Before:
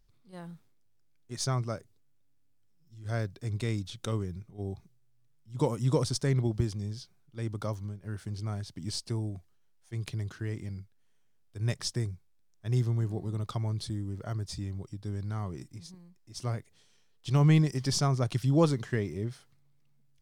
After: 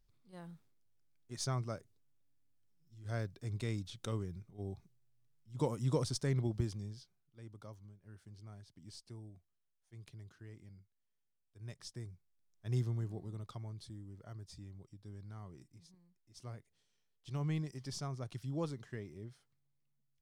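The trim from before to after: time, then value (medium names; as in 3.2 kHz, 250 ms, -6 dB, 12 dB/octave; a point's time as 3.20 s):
6.72 s -6.5 dB
7.41 s -17.5 dB
11.71 s -17.5 dB
12.75 s -6.5 dB
13.76 s -14.5 dB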